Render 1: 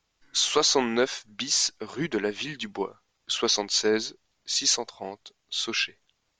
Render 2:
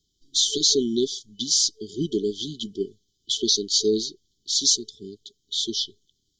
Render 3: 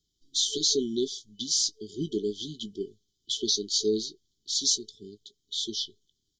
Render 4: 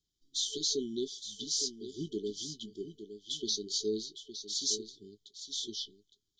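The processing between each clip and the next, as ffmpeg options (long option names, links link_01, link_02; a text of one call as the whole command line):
ffmpeg -i in.wav -af "afftfilt=real='re*(1-between(b*sr/4096,440,3000))':imag='im*(1-between(b*sr/4096,440,3000))':win_size=4096:overlap=0.75,volume=3.5dB" out.wav
ffmpeg -i in.wav -filter_complex "[0:a]asplit=2[link_01][link_02];[link_02]adelay=19,volume=-13dB[link_03];[link_01][link_03]amix=inputs=2:normalize=0,volume=-5.5dB" out.wav
ffmpeg -i in.wav -af "aecho=1:1:862:0.299,volume=-7dB" out.wav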